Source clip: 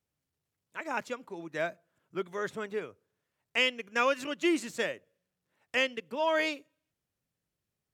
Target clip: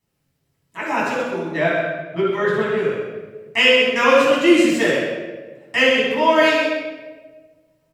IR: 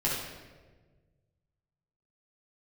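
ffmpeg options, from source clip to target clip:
-filter_complex "[0:a]asettb=1/sr,asplit=3[link_01][link_02][link_03];[link_01]atrim=end=1.444[link_04];[link_02]atrim=start=1.44:end=2.78,asetpts=PTS-STARTPTS,afade=type=in:duration=0.004:curve=qsin,afade=type=out:start_time=1.336:duration=0.004:curve=qsin,highshelf=frequency=4600:width_type=q:width=1.5:gain=-7[link_05];[link_03]atrim=start=2.776[link_06];[link_04][link_05]acrossfade=duration=0.004:curve1=hsin:curve2=qsin[link_07];[link_07][link_06]acrossfade=duration=0.004:curve1=qsin:curve2=hsin,aecho=1:1:130:0.398[link_08];[1:a]atrim=start_sample=2205[link_09];[link_08][link_09]afir=irnorm=-1:irlink=0,volume=5dB"

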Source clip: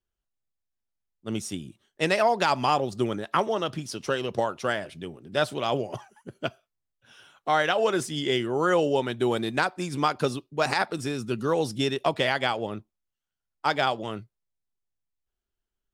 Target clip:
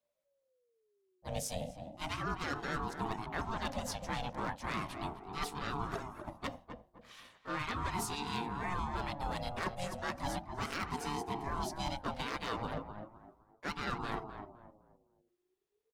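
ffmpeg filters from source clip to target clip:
ffmpeg -i in.wav -filter_complex "[0:a]bandreject=frequency=50:width_type=h:width=6,bandreject=frequency=100:width_type=h:width=6,bandreject=frequency=150:width_type=h:width=6,bandreject=frequency=200:width_type=h:width=6,bandreject=frequency=250:width_type=h:width=6,bandreject=frequency=300:width_type=h:width=6,bandreject=frequency=350:width_type=h:width=6,bandreject=frequency=400:width_type=h:width=6,areverse,acompressor=threshold=-32dB:ratio=12,areverse,aeval=exprs='0.0531*(abs(mod(val(0)/0.0531+3,4)-2)-1)':channel_layout=same,asplit=2[link_01][link_02];[link_02]asetrate=55563,aresample=44100,atempo=0.793701,volume=-5dB[link_03];[link_01][link_03]amix=inputs=2:normalize=0,asplit=2[link_04][link_05];[link_05]adelay=257,lowpass=frequency=1100:poles=1,volume=-7dB,asplit=2[link_06][link_07];[link_07]adelay=257,lowpass=frequency=1100:poles=1,volume=0.34,asplit=2[link_08][link_09];[link_09]adelay=257,lowpass=frequency=1100:poles=1,volume=0.34,asplit=2[link_10][link_11];[link_11]adelay=257,lowpass=frequency=1100:poles=1,volume=0.34[link_12];[link_04][link_06][link_08][link_10][link_12]amix=inputs=5:normalize=0,aeval=exprs='val(0)*sin(2*PI*470*n/s+470*0.25/0.36*sin(2*PI*0.36*n/s))':channel_layout=same" out.wav

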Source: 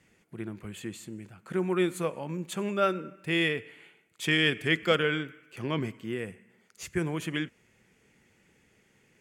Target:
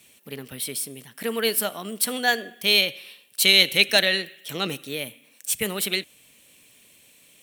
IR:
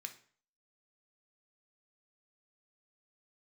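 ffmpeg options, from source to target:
-af "crystalizer=i=8.5:c=0,asetrate=54684,aresample=44100"

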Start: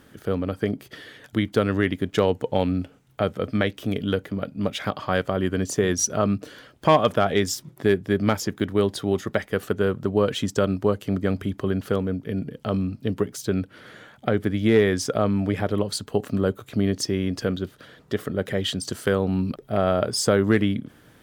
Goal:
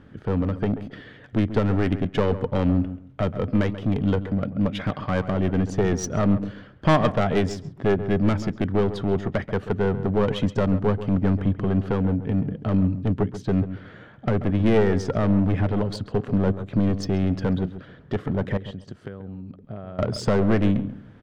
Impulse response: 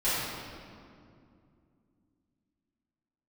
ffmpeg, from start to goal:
-filter_complex "[0:a]bass=frequency=250:gain=8,treble=frequency=4000:gain=-2,asettb=1/sr,asplit=3[link_01][link_02][link_03];[link_01]atrim=end=18.574[link_04];[link_02]atrim=start=18.57:end=19.99,asetpts=PTS-STARTPTS,afade=type=in:duration=0.004:curve=qsin,afade=type=out:start_time=1.416:duration=0.004:curve=qsin,acompressor=threshold=-33dB:ratio=12[link_05];[link_03]atrim=start=19.986[link_06];[link_04][link_05]acrossfade=duration=0.004:curve1=hsin:curve2=qsin[link_07];[link_07][link_06]acrossfade=duration=0.004:curve1=qsin:curve2=hsin,aeval=exprs='clip(val(0),-1,0.126)':channel_layout=same,adynamicsmooth=sensitivity=1:basefreq=3300,asplit=2[link_08][link_09];[link_09]adelay=135,lowpass=frequency=1500:poles=1,volume=-11.5dB,asplit=2[link_10][link_11];[link_11]adelay=135,lowpass=frequency=1500:poles=1,volume=0.21,asplit=2[link_12][link_13];[link_13]adelay=135,lowpass=frequency=1500:poles=1,volume=0.21[link_14];[link_08][link_10][link_12][link_14]amix=inputs=4:normalize=0"

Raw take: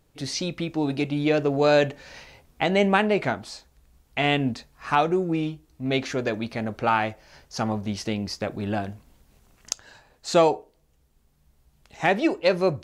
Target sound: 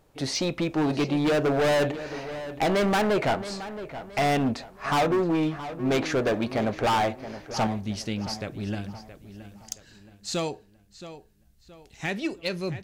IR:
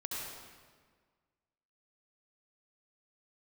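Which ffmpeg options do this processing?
-filter_complex "[0:a]asetnsamples=nb_out_samples=441:pad=0,asendcmd='7.67 equalizer g -8.5;8.75 equalizer g -14.5',equalizer=frequency=740:width_type=o:width=2.4:gain=7.5,volume=20.5dB,asoftclip=hard,volume=-20.5dB,asplit=2[link_01][link_02];[link_02]adelay=672,lowpass=frequency=4400:poles=1,volume=-13dB,asplit=2[link_03][link_04];[link_04]adelay=672,lowpass=frequency=4400:poles=1,volume=0.39,asplit=2[link_05][link_06];[link_06]adelay=672,lowpass=frequency=4400:poles=1,volume=0.39,asplit=2[link_07][link_08];[link_08]adelay=672,lowpass=frequency=4400:poles=1,volume=0.39[link_09];[link_01][link_03][link_05][link_07][link_09]amix=inputs=5:normalize=0"

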